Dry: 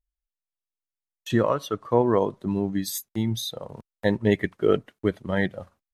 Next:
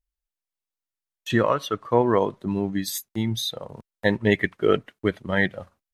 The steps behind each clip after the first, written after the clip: dynamic bell 2.2 kHz, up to +7 dB, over -42 dBFS, Q 0.71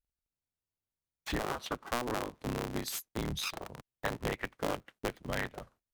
cycle switcher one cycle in 3, inverted; compression 5:1, threshold -24 dBFS, peak gain reduction 10.5 dB; trim -7 dB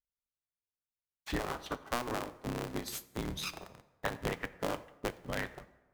plate-style reverb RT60 1.4 s, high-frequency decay 0.6×, DRR 8.5 dB; upward expansion 1.5:1, over -53 dBFS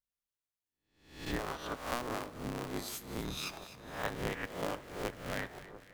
reverse spectral sustain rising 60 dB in 0.55 s; two-band feedback delay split 1.6 kHz, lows 694 ms, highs 251 ms, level -14 dB; trim -3.5 dB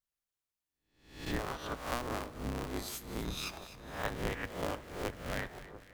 octave divider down 2 oct, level -2 dB

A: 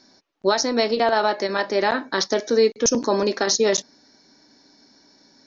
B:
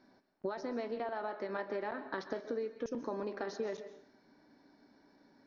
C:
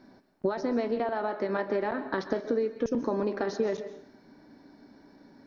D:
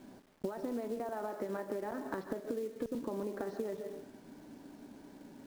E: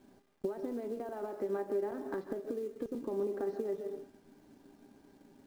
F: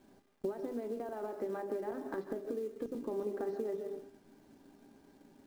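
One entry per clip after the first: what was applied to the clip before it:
low-pass 2 kHz 12 dB/octave; compression 12:1, threshold -28 dBFS, peak gain reduction 15 dB; on a send at -11 dB: reverberation RT60 0.60 s, pre-delay 117 ms; on the sum: trim -6.5 dB
bass shelf 360 Hz +7 dB; trim +6.5 dB
low-pass 1.1 kHz 6 dB/octave; compression 5:1, threshold -38 dBFS, peak gain reduction 13.5 dB; companded quantiser 6-bit; trim +2 dB
feedback comb 400 Hz, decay 0.15 s, harmonics all, mix 70%; in parallel at -6 dB: hysteresis with a dead band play -53.5 dBFS; on the sum: dynamic bell 340 Hz, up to +6 dB, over -52 dBFS, Q 0.73
hum notches 50/100/150/200/250/300/350/400 Hz

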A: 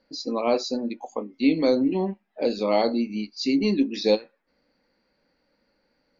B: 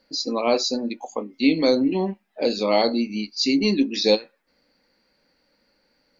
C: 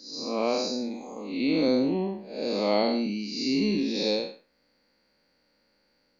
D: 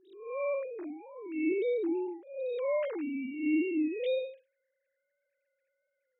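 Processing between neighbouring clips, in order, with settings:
treble shelf 2.7 kHz +8.5 dB; trim +1.5 dB
spectral blur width 216 ms; trim -1.5 dB
formants replaced by sine waves; trim -5.5 dB

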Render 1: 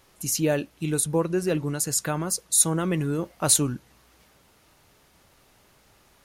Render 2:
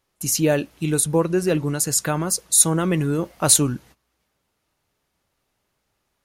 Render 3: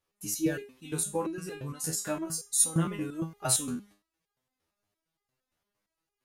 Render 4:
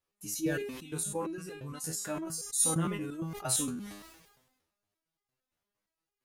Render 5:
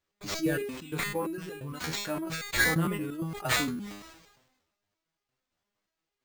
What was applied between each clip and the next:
gate -50 dBFS, range -19 dB; trim +4.5 dB
resonator arpeggio 8.7 Hz 81–410 Hz
decay stretcher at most 51 dB/s; trim -4.5 dB
careless resampling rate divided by 4×, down none, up hold; trim +3 dB

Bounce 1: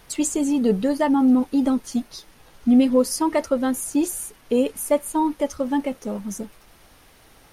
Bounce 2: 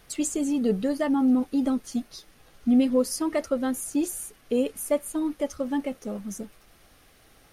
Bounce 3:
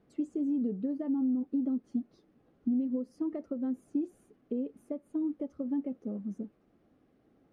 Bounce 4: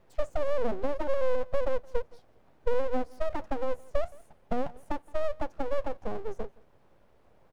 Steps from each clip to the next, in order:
band-stop 930 Hz, Q 6.3; trim -4.5 dB
compression 6:1, threshold -27 dBFS, peak gain reduction 10.5 dB; band-pass filter 260 Hz, Q 1.6
full-wave rectifier; delay 169 ms -24 dB; trim +7 dB

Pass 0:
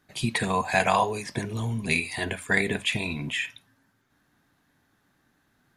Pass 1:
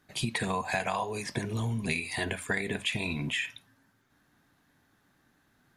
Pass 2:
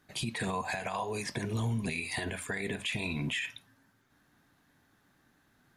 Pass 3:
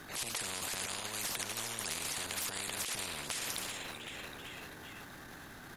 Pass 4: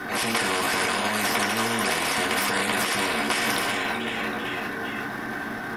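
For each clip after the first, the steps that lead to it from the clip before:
compression 6:1, threshold -27 dBFS, peak gain reduction 10.5 dB
peak limiter -24 dBFS, peak gain reduction 9.5 dB
frequency-shifting echo 384 ms, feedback 51%, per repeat +42 Hz, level -22 dB; transient shaper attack -10 dB, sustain +10 dB; spectrum-flattening compressor 10:1
reverberation RT60 0.35 s, pre-delay 3 ms, DRR -3.5 dB; trim +6.5 dB

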